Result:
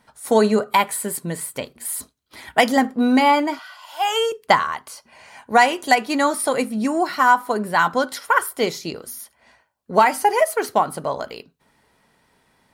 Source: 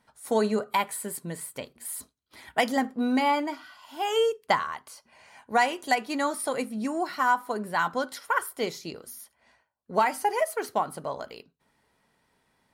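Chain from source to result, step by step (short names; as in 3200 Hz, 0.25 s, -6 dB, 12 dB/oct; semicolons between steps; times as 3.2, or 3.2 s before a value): 3.59–4.32 steep high-pass 510 Hz 36 dB/oct; gain +8.5 dB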